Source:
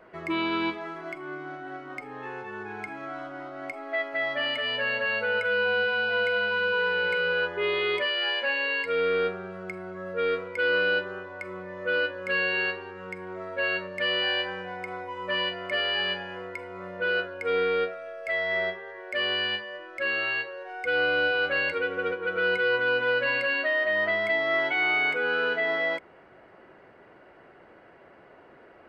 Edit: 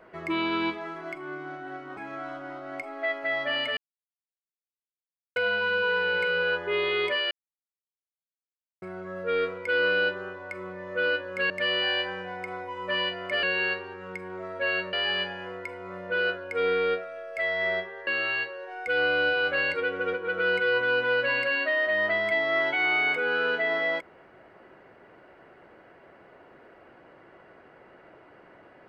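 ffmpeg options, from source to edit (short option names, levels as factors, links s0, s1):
-filter_complex "[0:a]asplit=10[s0][s1][s2][s3][s4][s5][s6][s7][s8][s9];[s0]atrim=end=1.972[s10];[s1]atrim=start=2.868:end=4.67,asetpts=PTS-STARTPTS,afade=t=out:st=1.798:d=0.004:c=hsin[s11];[s2]atrim=start=4.67:end=6.26,asetpts=PTS-STARTPTS,volume=0[s12];[s3]atrim=start=6.26:end=8.21,asetpts=PTS-STARTPTS,afade=t=in:d=0.004:c=hsin,afade=t=out:st=1.946:d=0.004:c=hsin[s13];[s4]atrim=start=8.21:end=9.72,asetpts=PTS-STARTPTS,volume=0[s14];[s5]atrim=start=9.72:end=12.402,asetpts=PTS-STARTPTS,afade=t=in:d=0.004:c=hsin[s15];[s6]atrim=start=13.898:end=15.832[s16];[s7]atrim=start=12.398:end=13.902[s17];[s8]atrim=start=15.828:end=18.972[s18];[s9]atrim=start=20.048[s19];[s11][s12][s13][s14][s15]concat=n=5:v=0:a=1[s20];[s10][s20]acrossfade=d=0.004:c1=hsin:c2=hsin[s21];[s21][s16]acrossfade=d=0.004:c1=hsin:c2=hsin[s22];[s22][s17]acrossfade=d=0.004:c1=hsin:c2=hsin[s23];[s23][s18]acrossfade=d=0.004:c1=hsin:c2=hsin[s24];[s24][s19]acrossfade=d=0.004:c1=hsin:c2=hsin"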